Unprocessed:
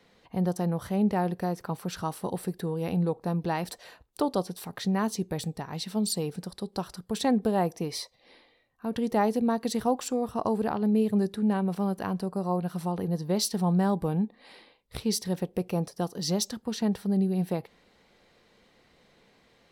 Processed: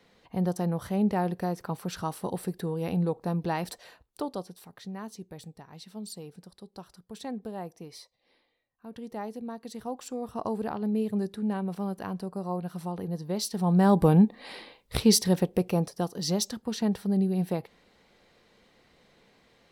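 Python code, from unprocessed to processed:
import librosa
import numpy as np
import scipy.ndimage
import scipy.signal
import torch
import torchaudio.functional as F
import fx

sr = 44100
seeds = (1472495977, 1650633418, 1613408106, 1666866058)

y = fx.gain(x, sr, db=fx.line((3.7, -0.5), (4.79, -12.0), (9.7, -12.0), (10.38, -4.0), (13.49, -4.0), (14.03, 8.5), (15.01, 8.5), (16.08, 0.0)))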